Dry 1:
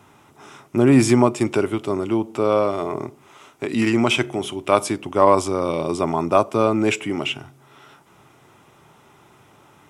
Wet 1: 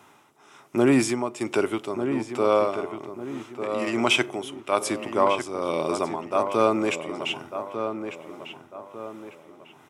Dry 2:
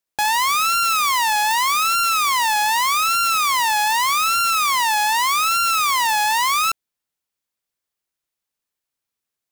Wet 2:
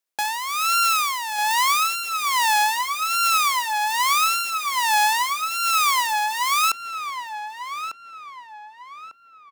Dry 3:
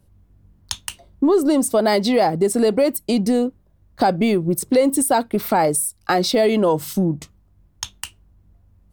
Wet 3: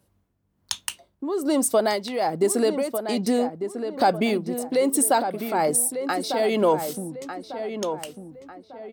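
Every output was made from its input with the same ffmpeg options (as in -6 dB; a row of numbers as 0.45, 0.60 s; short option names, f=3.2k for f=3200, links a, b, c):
-filter_complex "[0:a]highpass=f=360:p=1,tremolo=f=1.2:d=0.68,asplit=2[a][b];[b]adelay=1198,lowpass=f=2.2k:p=1,volume=-8dB,asplit=2[c][d];[d]adelay=1198,lowpass=f=2.2k:p=1,volume=0.4,asplit=2[e][f];[f]adelay=1198,lowpass=f=2.2k:p=1,volume=0.4,asplit=2[g][h];[h]adelay=1198,lowpass=f=2.2k:p=1,volume=0.4,asplit=2[i][j];[j]adelay=1198,lowpass=f=2.2k:p=1,volume=0.4[k];[a][c][e][g][i][k]amix=inputs=6:normalize=0"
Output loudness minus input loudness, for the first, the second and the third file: -5.5, -3.5, -5.0 LU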